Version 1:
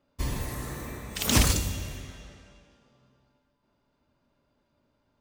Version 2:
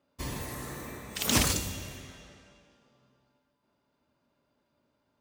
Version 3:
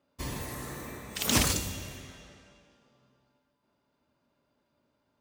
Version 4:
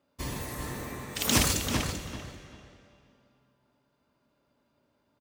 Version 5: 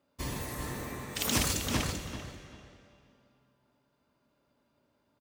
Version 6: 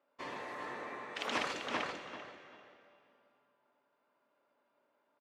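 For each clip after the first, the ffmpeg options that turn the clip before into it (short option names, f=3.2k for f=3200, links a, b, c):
-af "highpass=f=140:p=1,volume=-1.5dB"
-af anull
-filter_complex "[0:a]asplit=2[a][b];[b]adelay=390,lowpass=f=3.2k:p=1,volume=-4dB,asplit=2[c][d];[d]adelay=390,lowpass=f=3.2k:p=1,volume=0.24,asplit=2[e][f];[f]adelay=390,lowpass=f=3.2k:p=1,volume=0.24[g];[a][c][e][g]amix=inputs=4:normalize=0,volume=1dB"
-af "alimiter=limit=-12.5dB:level=0:latency=1:release=476,volume=-1dB"
-af "highpass=500,lowpass=2.3k,volume=1dB"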